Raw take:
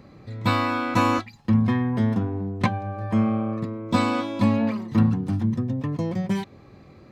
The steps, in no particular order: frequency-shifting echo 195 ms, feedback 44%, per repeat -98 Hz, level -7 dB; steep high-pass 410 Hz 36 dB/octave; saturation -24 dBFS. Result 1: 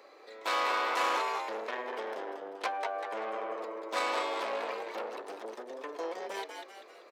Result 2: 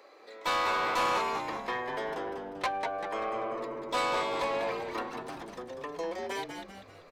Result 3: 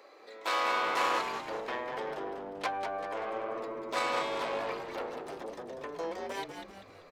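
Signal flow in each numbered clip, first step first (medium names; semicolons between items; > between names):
frequency-shifting echo > saturation > steep high-pass; steep high-pass > frequency-shifting echo > saturation; saturation > steep high-pass > frequency-shifting echo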